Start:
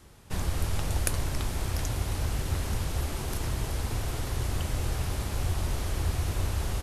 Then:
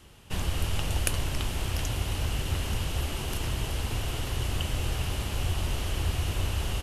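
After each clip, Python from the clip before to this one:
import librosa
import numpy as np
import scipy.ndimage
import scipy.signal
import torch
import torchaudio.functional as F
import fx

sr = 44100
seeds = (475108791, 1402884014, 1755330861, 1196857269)

y = fx.peak_eq(x, sr, hz=2900.0, db=10.5, octaves=0.37)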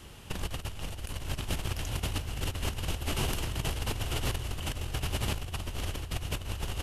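y = fx.over_compress(x, sr, threshold_db=-32.0, ratio=-0.5)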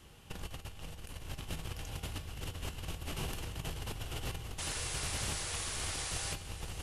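y = fx.spec_paint(x, sr, seeds[0], shape='noise', start_s=4.58, length_s=1.76, low_hz=290.0, high_hz=11000.0, level_db=-32.0)
y = fx.comb_fb(y, sr, f0_hz=160.0, decay_s=0.65, harmonics='odd', damping=0.0, mix_pct=70)
y = y + 10.0 ** (-13.5 / 20.0) * np.pad(y, (int(585 * sr / 1000.0), 0))[:len(y)]
y = y * 10.0 ** (1.5 / 20.0)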